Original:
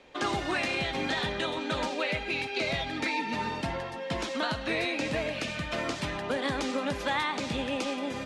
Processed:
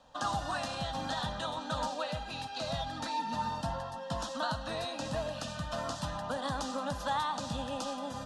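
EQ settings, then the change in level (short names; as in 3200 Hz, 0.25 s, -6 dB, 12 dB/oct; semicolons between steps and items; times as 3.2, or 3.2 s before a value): fixed phaser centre 920 Hz, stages 4; 0.0 dB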